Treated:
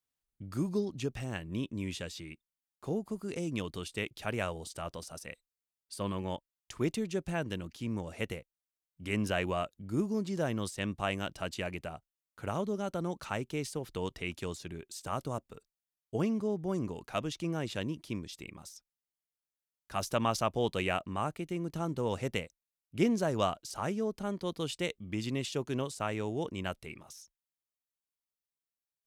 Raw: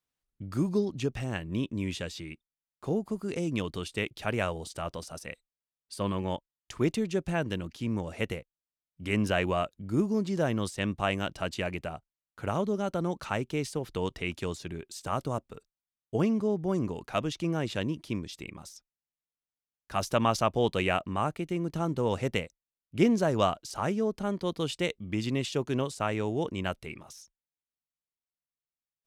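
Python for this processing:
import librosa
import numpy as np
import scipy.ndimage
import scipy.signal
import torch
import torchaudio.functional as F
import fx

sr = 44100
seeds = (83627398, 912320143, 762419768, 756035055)

y = fx.high_shelf(x, sr, hz=6300.0, db=5.5)
y = y * 10.0 ** (-4.5 / 20.0)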